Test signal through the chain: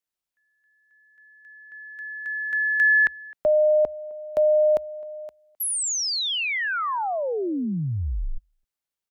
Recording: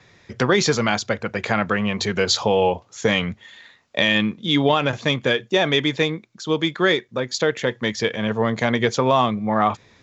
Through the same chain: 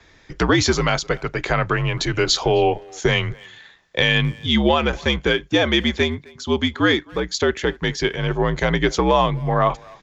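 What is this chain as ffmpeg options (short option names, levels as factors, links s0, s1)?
-filter_complex "[0:a]asplit=2[s0][s1];[s1]adelay=260,highpass=300,lowpass=3400,asoftclip=type=hard:threshold=0.2,volume=0.0708[s2];[s0][s2]amix=inputs=2:normalize=0,afreqshift=-70,volume=1.12"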